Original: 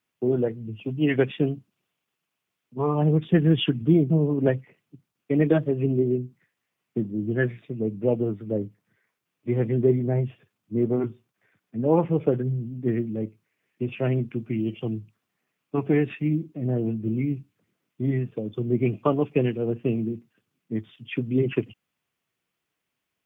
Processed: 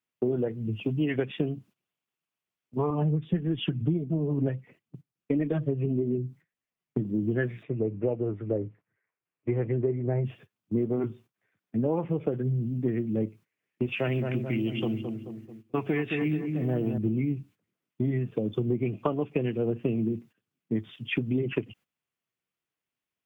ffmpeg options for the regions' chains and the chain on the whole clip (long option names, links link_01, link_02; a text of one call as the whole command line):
ffmpeg -i in.wav -filter_complex "[0:a]asettb=1/sr,asplit=3[link_01][link_02][link_03];[link_01]atrim=end=2.904[link_04];[link_02]atrim=start=2.9:end=7.05,asetpts=PTS-STARTPTS,afade=type=in:duration=0.004:curve=qsin,afade=type=out:start_time=4.146:duration=0.004:curve=qsin,lowshelf=frequency=170:gain=9,flanger=delay=2.8:depth=4.8:regen=38:speed=1.6:shape=triangular[link_05];[link_03]atrim=start=7.046[link_06];[link_04][link_05]acrossfade=duration=0.004:curve1=hsin:curve2=qsin[link_07];[link_07][link_06]acrossfade=duration=0.004:curve1=qsin:curve2=hsin,asettb=1/sr,asplit=3[link_08][link_09][link_10];[link_08]atrim=end=7.634[link_11];[link_09]atrim=start=7.63:end=10.25,asetpts=PTS-STARTPTS,afade=type=in:duration=0.004:curve=qsin,afade=type=out:start_time=2.616:duration=0.004:curve=qsin,lowpass=frequency=2600:width=0.5412,lowpass=frequency=2600:width=1.3066,equalizer=frequency=210:width_type=o:width=0.63:gain=-8[link_12];[link_10]atrim=start=10.246[link_13];[link_11][link_12]acrossfade=duration=0.004:curve1=hsin:curve2=qsin[link_14];[link_14][link_13]acrossfade=duration=0.004:curve1=qsin:curve2=hsin,asettb=1/sr,asplit=3[link_15][link_16][link_17];[link_15]atrim=end=13.864[link_18];[link_16]atrim=start=13.86:end=16.98,asetpts=PTS-STARTPTS,afade=type=in:duration=0.004:curve=qsin,afade=type=out:start_time=3.116:duration=0.004:curve=qsin,tiltshelf=frequency=880:gain=-5.5,asplit=2[link_19][link_20];[link_20]adelay=217,lowpass=frequency=1300:poles=1,volume=-7dB,asplit=2[link_21][link_22];[link_22]adelay=217,lowpass=frequency=1300:poles=1,volume=0.53,asplit=2[link_23][link_24];[link_24]adelay=217,lowpass=frequency=1300:poles=1,volume=0.53,asplit=2[link_25][link_26];[link_26]adelay=217,lowpass=frequency=1300:poles=1,volume=0.53,asplit=2[link_27][link_28];[link_28]adelay=217,lowpass=frequency=1300:poles=1,volume=0.53,asplit=2[link_29][link_30];[link_30]adelay=217,lowpass=frequency=1300:poles=1,volume=0.53[link_31];[link_19][link_21][link_23][link_25][link_27][link_29][link_31]amix=inputs=7:normalize=0,atrim=end_sample=137592[link_32];[link_17]atrim=start=16.976[link_33];[link_18][link_32]acrossfade=duration=0.004:curve1=hsin:curve2=qsin[link_34];[link_34][link_33]acrossfade=duration=0.004:curve1=qsin:curve2=hsin,agate=range=-14dB:threshold=-50dB:ratio=16:detection=peak,acompressor=threshold=-28dB:ratio=10,volume=4.5dB" out.wav